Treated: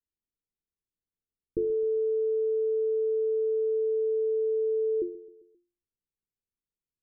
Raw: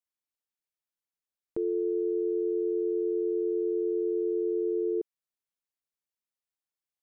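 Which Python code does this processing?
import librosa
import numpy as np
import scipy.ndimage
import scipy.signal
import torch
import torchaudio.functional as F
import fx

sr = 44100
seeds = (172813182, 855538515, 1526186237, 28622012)

y = scipy.signal.sosfilt(scipy.signal.butter(16, 510.0, 'lowpass', fs=sr, output='sos'), x)
y = fx.tilt_eq(y, sr, slope=-3.0)
y = fx.hum_notches(y, sr, base_hz=50, count=7)
y = fx.echo_feedback(y, sr, ms=132, feedback_pct=52, wet_db=-18.5)
y = fx.env_flatten(y, sr, amount_pct=50, at=(1.64, 3.77))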